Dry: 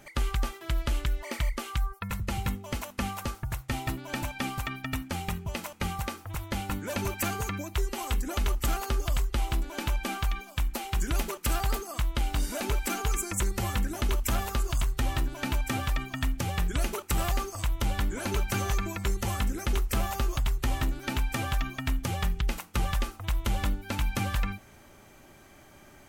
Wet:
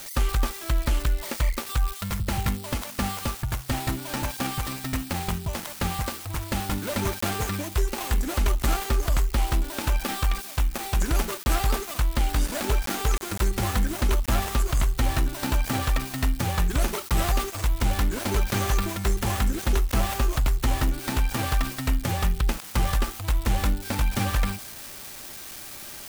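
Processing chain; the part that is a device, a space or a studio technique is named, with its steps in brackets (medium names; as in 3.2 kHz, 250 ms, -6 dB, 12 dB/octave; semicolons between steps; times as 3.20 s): budget class-D amplifier (dead-time distortion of 0.23 ms; zero-crossing glitches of -27 dBFS); trim +5 dB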